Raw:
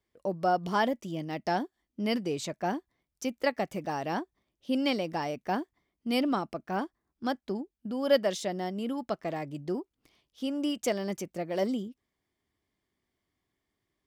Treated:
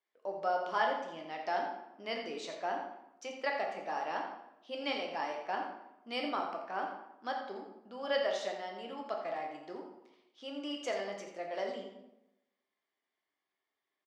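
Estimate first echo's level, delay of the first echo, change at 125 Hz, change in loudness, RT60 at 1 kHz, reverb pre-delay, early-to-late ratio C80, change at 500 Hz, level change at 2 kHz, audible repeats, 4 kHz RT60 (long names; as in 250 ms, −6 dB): −9.0 dB, 85 ms, below −20 dB, −5.5 dB, 0.85 s, 8 ms, 6.0 dB, −5.5 dB, −2.0 dB, 1, 0.60 s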